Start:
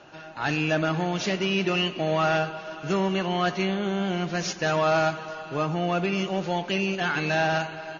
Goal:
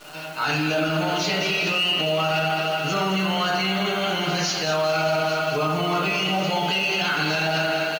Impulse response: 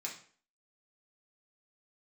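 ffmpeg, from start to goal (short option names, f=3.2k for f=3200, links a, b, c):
-filter_complex "[0:a]equalizer=f=79:w=0.91:g=-14,aecho=1:1:6.7:0.55,asplit=2[a][b];[b]aecho=0:1:210|420|630|840|1050|1260|1470:0.316|0.183|0.106|0.0617|0.0358|0.0208|0.012[c];[a][c]amix=inputs=2:normalize=0[d];[1:a]atrim=start_sample=2205,asetrate=26460,aresample=44100[e];[d][e]afir=irnorm=-1:irlink=0,asplit=2[f][g];[g]asoftclip=type=tanh:threshold=-17dB,volume=-7dB[h];[f][h]amix=inputs=2:normalize=0,highshelf=f=4.5k:g=7,alimiter=limit=-16dB:level=0:latency=1,acrusher=bits=8:dc=4:mix=0:aa=0.000001,volume=1dB"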